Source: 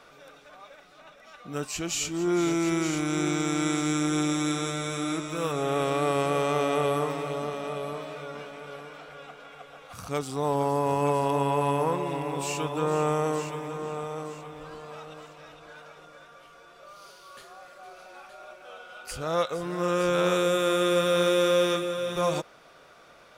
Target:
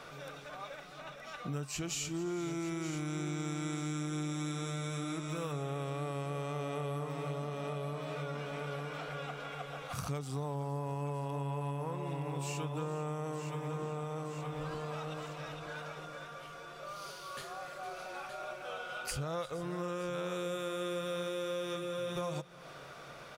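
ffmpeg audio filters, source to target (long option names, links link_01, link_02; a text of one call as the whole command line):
ffmpeg -i in.wav -filter_complex "[0:a]equalizer=frequency=140:width_type=o:width=0.34:gain=11.5,acompressor=threshold=-39dB:ratio=6,asplit=2[link_01][link_02];[link_02]aecho=0:1:350:0.0944[link_03];[link_01][link_03]amix=inputs=2:normalize=0,volume=3.5dB" out.wav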